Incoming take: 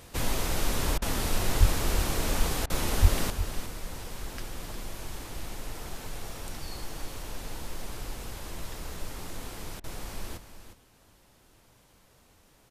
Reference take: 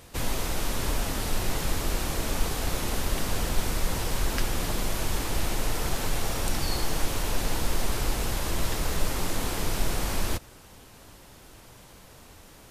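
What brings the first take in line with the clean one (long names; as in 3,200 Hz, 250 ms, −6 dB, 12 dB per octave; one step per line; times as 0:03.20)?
high-pass at the plosives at 0:01.59/0:03.01
repair the gap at 0:00.98/0:02.66/0:09.80, 38 ms
echo removal 358 ms −10.5 dB
level 0 dB, from 0:03.30 +11 dB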